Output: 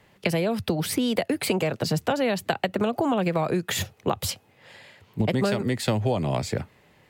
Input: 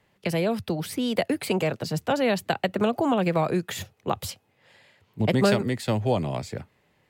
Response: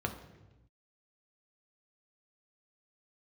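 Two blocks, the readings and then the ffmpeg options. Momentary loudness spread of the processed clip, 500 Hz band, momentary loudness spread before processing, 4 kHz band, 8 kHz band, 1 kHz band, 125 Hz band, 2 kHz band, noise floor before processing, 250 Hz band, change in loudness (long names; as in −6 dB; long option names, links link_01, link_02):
5 LU, −0.5 dB, 11 LU, +2.0 dB, +5.0 dB, −0.5 dB, +1.0 dB, +0.5 dB, −67 dBFS, 0.0 dB, 0.0 dB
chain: -af "acompressor=threshold=-29dB:ratio=6,volume=8dB"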